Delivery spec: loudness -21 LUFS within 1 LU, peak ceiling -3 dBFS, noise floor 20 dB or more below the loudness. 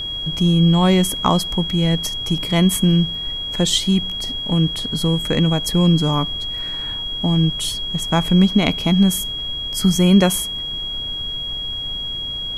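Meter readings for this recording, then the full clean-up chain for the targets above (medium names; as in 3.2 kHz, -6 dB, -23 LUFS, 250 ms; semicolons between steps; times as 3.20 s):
steady tone 3.3 kHz; tone level -24 dBFS; noise floor -27 dBFS; noise floor target -39 dBFS; loudness -18.5 LUFS; peak level -1.5 dBFS; loudness target -21.0 LUFS
-> band-stop 3.3 kHz, Q 30; noise print and reduce 12 dB; trim -2.5 dB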